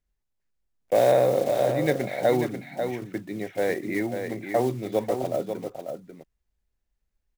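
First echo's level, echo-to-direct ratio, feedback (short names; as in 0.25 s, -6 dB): -7.0 dB, -7.0 dB, no steady repeat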